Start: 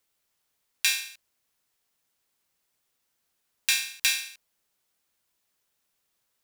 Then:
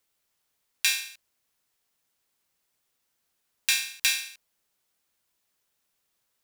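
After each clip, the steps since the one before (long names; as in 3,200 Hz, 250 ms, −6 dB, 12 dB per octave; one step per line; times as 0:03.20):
no processing that can be heard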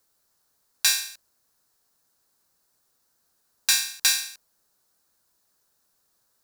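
flat-topped bell 2,600 Hz −9.5 dB 1 octave
gain into a clipping stage and back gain 17 dB
level +6.5 dB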